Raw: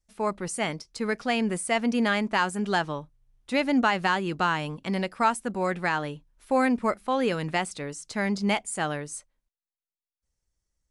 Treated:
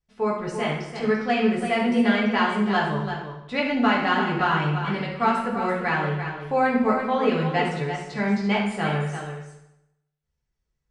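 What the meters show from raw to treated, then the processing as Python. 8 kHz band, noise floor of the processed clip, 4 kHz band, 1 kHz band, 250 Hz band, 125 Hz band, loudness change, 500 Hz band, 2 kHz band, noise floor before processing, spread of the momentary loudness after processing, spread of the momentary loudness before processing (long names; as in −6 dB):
below −10 dB, −79 dBFS, +1.5 dB, +3.5 dB, +4.0 dB, +7.5 dB, +3.5 dB, +4.0 dB, +3.0 dB, below −85 dBFS, 8 LU, 10 LU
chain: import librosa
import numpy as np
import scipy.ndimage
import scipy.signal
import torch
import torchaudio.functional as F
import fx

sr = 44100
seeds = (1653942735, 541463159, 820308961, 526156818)

p1 = scipy.signal.sosfilt(scipy.signal.butter(2, 4000.0, 'lowpass', fs=sr, output='sos'), x)
p2 = p1 + fx.echo_single(p1, sr, ms=340, db=-8.5, dry=0)
p3 = fx.rev_fdn(p2, sr, rt60_s=0.86, lf_ratio=1.1, hf_ratio=0.85, size_ms=41.0, drr_db=-4.5)
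y = p3 * librosa.db_to_amplitude(-3.0)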